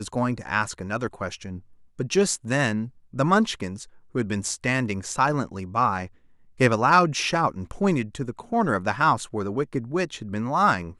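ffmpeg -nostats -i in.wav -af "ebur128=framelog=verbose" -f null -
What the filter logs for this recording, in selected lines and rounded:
Integrated loudness:
  I:         -24.5 LUFS
  Threshold: -34.8 LUFS
Loudness range:
  LRA:         3.2 LU
  Threshold: -44.5 LUFS
  LRA low:   -26.0 LUFS
  LRA high:  -22.8 LUFS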